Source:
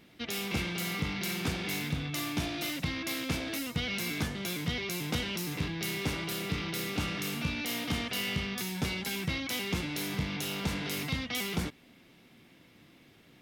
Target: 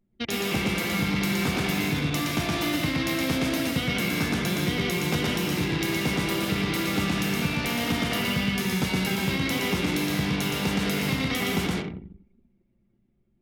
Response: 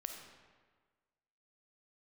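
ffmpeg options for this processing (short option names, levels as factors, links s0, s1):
-filter_complex "[0:a]asplit=2[s0][s1];[1:a]atrim=start_sample=2205,highshelf=f=11000:g=-3,adelay=118[s2];[s1][s2]afir=irnorm=-1:irlink=0,volume=1.33[s3];[s0][s3]amix=inputs=2:normalize=0,anlmdn=0.631,acrossover=split=99|2000|7500[s4][s5][s6][s7];[s4]acompressor=threshold=0.00316:ratio=4[s8];[s5]acompressor=threshold=0.0316:ratio=4[s9];[s6]acompressor=threshold=0.00891:ratio=4[s10];[s7]acompressor=threshold=0.00447:ratio=4[s11];[s8][s9][s10][s11]amix=inputs=4:normalize=0,volume=2.37"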